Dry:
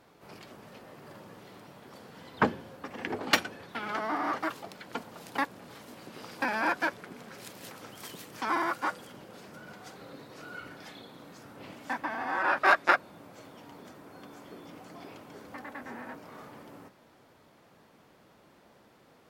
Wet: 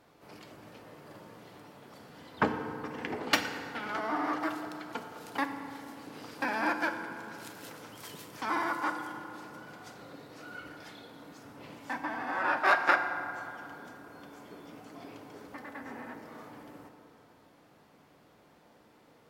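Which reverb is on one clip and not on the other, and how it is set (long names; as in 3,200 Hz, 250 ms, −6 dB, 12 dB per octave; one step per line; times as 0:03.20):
feedback delay network reverb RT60 2.8 s, high-frequency decay 0.45×, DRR 5.5 dB
level −2.5 dB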